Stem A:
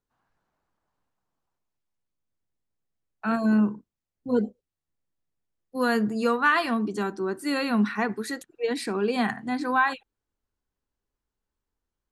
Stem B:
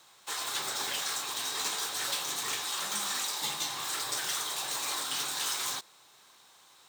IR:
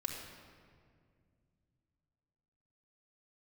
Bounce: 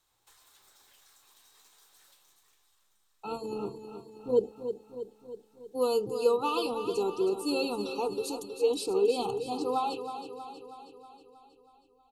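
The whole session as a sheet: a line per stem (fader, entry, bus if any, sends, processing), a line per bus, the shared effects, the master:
-2.5 dB, 0.00 s, no send, echo send -9.5 dB, elliptic band-stop 1.3–2.6 kHz, stop band 40 dB; peaking EQ 1.5 kHz -14.5 dB 0.82 oct; comb 2.3 ms, depth 91%
-18.5 dB, 0.00 s, no send, echo send -20.5 dB, peaking EQ 13 kHz +8 dB 0.81 oct; compression 6:1, threshold -41 dBFS, peak gain reduction 13.5 dB; auto duck -19 dB, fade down 1.15 s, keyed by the first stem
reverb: none
echo: feedback delay 319 ms, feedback 59%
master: none

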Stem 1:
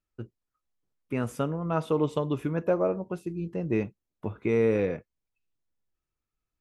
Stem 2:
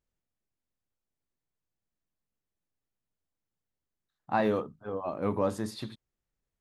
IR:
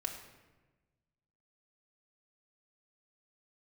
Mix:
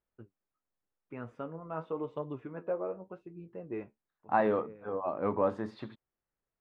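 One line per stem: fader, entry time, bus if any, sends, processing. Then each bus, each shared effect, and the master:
-3.5 dB, 0.00 s, no send, flange 0.89 Hz, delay 6.1 ms, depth 8 ms, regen +52%; auto duck -17 dB, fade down 0.20 s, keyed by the second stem
+2.5 dB, 0.00 s, no send, none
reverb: none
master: low-pass 1.7 kHz 12 dB/octave; bass shelf 260 Hz -11 dB

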